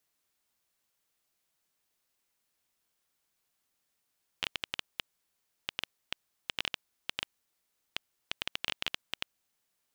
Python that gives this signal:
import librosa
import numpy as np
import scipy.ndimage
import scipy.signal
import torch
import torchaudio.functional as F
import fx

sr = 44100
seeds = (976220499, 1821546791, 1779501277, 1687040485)

y = fx.geiger_clicks(sr, seeds[0], length_s=5.19, per_s=6.9, level_db=-13.0)